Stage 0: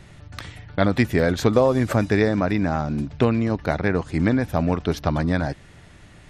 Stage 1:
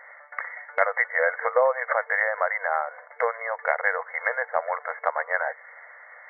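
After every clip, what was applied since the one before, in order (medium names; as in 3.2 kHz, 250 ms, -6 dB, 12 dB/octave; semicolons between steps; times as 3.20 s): tilt EQ +4.5 dB/octave; FFT band-pass 460–2200 Hz; in parallel at +1 dB: compression, threshold -34 dBFS, peak gain reduction 16.5 dB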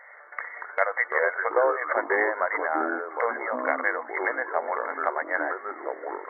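ever faster or slower copies 135 ms, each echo -4 st, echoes 3, each echo -6 dB; trim -2 dB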